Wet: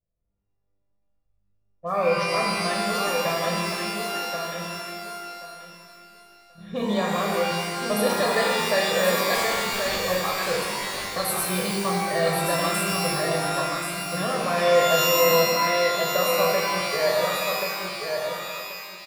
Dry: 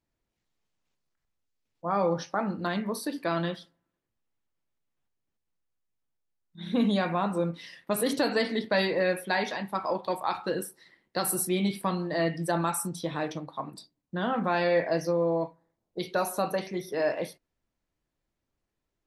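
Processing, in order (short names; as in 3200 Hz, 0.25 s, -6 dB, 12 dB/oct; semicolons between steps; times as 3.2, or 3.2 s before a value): in parallel at -7 dB: bit-crush 7-bit; on the sum: comb 1.7 ms, depth 81%; 9.34–10.05 wrapped overs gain 22.5 dB; low-pass opened by the level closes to 630 Hz, open at -21.5 dBFS; on a send: feedback echo 1.081 s, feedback 18%, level -5.5 dB; on the sum: shimmer reverb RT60 1.7 s, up +12 st, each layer -2 dB, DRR 0.5 dB; gain -5.5 dB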